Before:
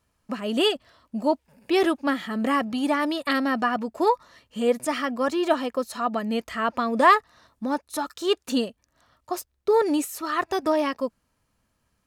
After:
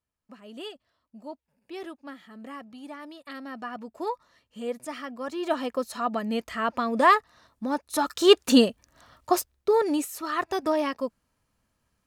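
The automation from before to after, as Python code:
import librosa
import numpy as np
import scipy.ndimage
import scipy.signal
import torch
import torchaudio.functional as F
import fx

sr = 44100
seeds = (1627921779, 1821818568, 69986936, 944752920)

y = fx.gain(x, sr, db=fx.line((3.24, -17.5), (3.87, -10.0), (5.24, -10.0), (5.66, -2.0), (7.72, -2.0), (8.22, 7.0), (9.33, 7.0), (9.77, -2.5)))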